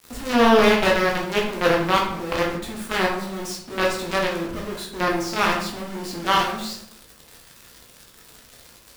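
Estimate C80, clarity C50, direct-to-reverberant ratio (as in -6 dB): 8.0 dB, 5.0 dB, -2.5 dB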